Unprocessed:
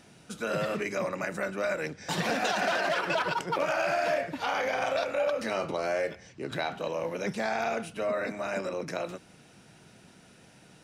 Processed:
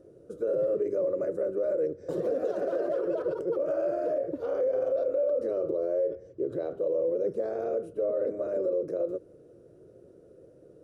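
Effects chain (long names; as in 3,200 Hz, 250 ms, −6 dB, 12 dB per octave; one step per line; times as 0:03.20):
drawn EQ curve 100 Hz 0 dB, 220 Hz −10 dB, 340 Hz +9 dB, 540 Hz +12 dB, 830 Hz −21 dB, 1,200 Hz −12 dB, 2,300 Hz −28 dB, 5,700 Hz −23 dB, 11,000 Hz −17 dB
brickwall limiter −21 dBFS, peak gain reduction 9 dB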